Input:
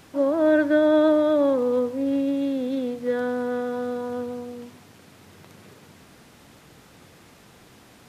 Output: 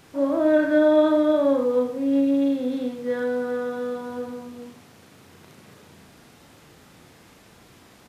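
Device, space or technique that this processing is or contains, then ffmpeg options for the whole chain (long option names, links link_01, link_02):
slapback doubling: -filter_complex "[0:a]asplit=3[link_01][link_02][link_03];[link_02]adelay=36,volume=-3.5dB[link_04];[link_03]adelay=83,volume=-6dB[link_05];[link_01][link_04][link_05]amix=inputs=3:normalize=0,volume=-2.5dB"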